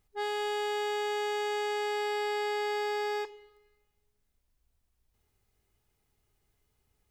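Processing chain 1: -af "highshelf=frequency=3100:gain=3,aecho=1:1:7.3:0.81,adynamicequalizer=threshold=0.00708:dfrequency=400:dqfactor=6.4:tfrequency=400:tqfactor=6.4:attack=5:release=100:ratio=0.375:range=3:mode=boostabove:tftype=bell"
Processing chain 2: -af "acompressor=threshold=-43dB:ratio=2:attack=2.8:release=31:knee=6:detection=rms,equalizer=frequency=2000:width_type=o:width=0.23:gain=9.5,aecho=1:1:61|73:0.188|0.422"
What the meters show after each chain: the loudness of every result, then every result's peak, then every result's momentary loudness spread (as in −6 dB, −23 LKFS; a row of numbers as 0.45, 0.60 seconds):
−24.0, −37.0 LKFS; −17.5, −31.5 dBFS; 2, 4 LU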